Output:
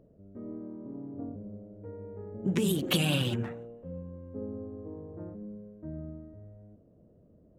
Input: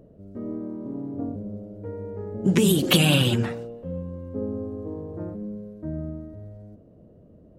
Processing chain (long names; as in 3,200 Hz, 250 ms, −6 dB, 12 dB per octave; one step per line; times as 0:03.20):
adaptive Wiener filter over 9 samples
level −8.5 dB